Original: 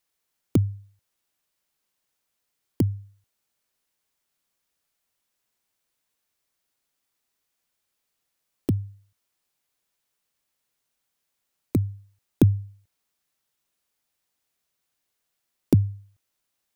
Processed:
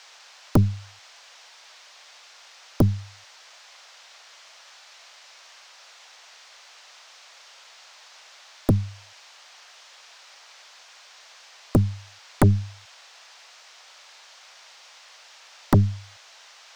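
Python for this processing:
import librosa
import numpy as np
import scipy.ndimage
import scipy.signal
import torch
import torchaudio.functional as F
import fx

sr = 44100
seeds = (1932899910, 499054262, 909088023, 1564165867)

y = fx.cheby_harmonics(x, sr, harmonics=(3, 5, 8), levels_db=(-13, -11, -13), full_scale_db=-5.0)
y = fx.dmg_noise_band(y, sr, seeds[0], low_hz=590.0, high_hz=6100.0, level_db=-50.0)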